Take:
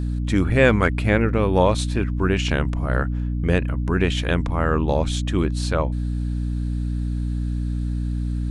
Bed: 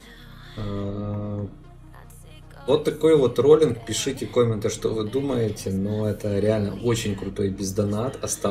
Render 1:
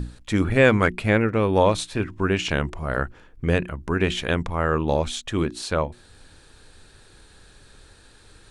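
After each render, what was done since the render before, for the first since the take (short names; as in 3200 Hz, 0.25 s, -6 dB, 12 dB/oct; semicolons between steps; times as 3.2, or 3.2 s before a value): notches 60/120/180/240/300/360 Hz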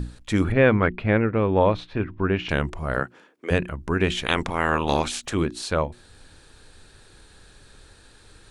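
0.52–2.49 air absorption 310 m; 2.99–3.5 HPF 110 Hz -> 390 Hz 24 dB/oct; 4.25–5.33 spectral limiter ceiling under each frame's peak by 18 dB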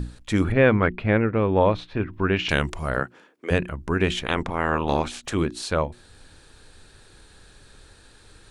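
2.13–2.9 high shelf 2400 Hz +10 dB; 4.19–5.25 high shelf 2700 Hz -9 dB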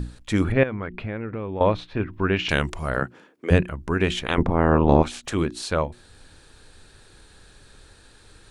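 0.63–1.61 compressor 4:1, threshold -27 dBFS; 3.02–3.62 low shelf 320 Hz +7.5 dB; 4.38–5.03 tilt shelf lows +9.5 dB, about 1200 Hz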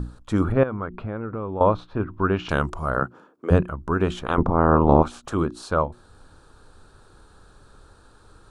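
resonant high shelf 1600 Hz -7 dB, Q 3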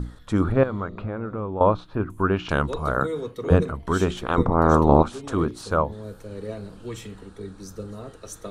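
add bed -12.5 dB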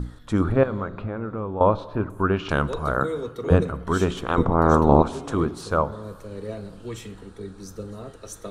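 plate-style reverb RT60 1.6 s, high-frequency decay 0.6×, DRR 16.5 dB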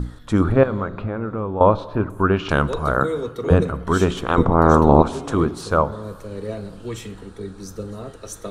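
gain +4 dB; limiter -1 dBFS, peak gain reduction 3 dB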